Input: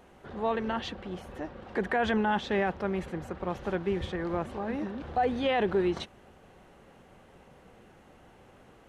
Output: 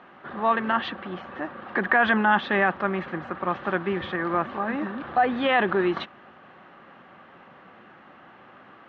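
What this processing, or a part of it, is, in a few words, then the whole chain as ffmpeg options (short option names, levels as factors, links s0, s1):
kitchen radio: -af "highpass=190,equalizer=f=450:t=q:w=4:g=-8,equalizer=f=1200:t=q:w=4:g=9,equalizer=f=1700:t=q:w=4:g=6,lowpass=f=3700:w=0.5412,lowpass=f=3700:w=1.3066,volume=2"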